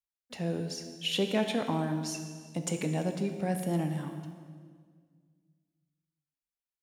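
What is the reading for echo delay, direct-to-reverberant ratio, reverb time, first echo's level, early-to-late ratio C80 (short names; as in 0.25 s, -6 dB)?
none, 5.5 dB, 1.8 s, none, 8.5 dB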